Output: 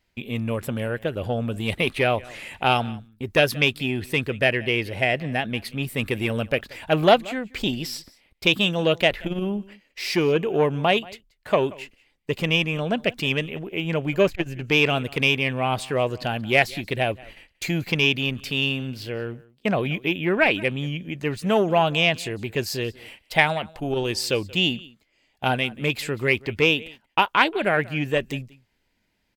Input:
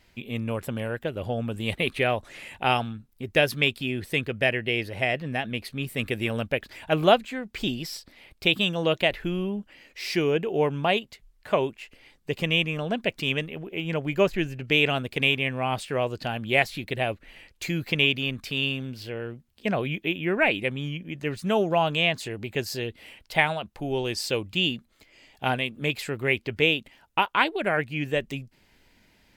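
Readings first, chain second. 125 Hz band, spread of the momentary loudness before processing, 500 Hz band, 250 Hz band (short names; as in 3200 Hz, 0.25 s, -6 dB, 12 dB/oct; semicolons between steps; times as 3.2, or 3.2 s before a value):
+3.5 dB, 11 LU, +3.0 dB, +3.5 dB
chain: gate -47 dBFS, range -15 dB; echo 0.181 s -23 dB; core saturation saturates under 870 Hz; gain +4 dB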